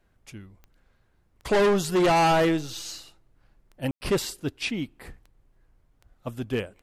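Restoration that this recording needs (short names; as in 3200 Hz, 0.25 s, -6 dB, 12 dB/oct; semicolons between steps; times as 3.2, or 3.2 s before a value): de-click; room tone fill 3.91–4.01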